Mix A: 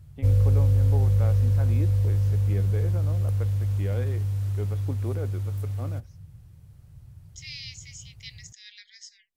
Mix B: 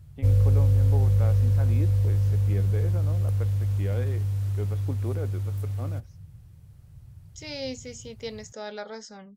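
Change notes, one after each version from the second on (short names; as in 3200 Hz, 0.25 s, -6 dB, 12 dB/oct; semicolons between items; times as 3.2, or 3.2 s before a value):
second voice: remove steep high-pass 1800 Hz 96 dB/oct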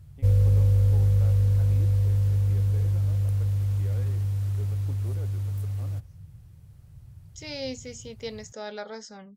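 first voice -10.0 dB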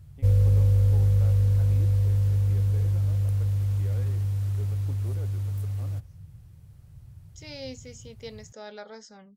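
second voice -5.0 dB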